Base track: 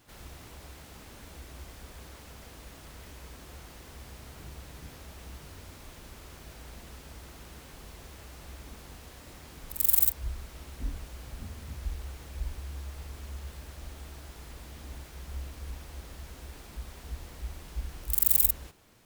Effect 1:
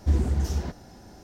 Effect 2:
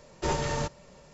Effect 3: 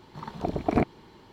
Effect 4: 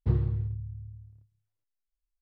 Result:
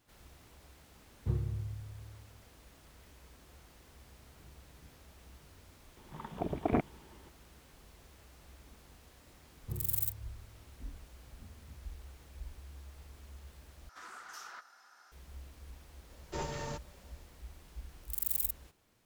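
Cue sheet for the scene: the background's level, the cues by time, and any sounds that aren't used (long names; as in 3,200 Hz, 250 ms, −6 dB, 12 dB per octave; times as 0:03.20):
base track −10.5 dB
0:01.20: mix in 4 −7.5 dB
0:05.97: mix in 3 −6.5 dB + downsampling to 8,000 Hz
0:09.62: mix in 4 −15 dB
0:13.89: overwrite with 1 −9.5 dB + high-pass with resonance 1,300 Hz, resonance Q 6.5
0:16.10: mix in 2 −10 dB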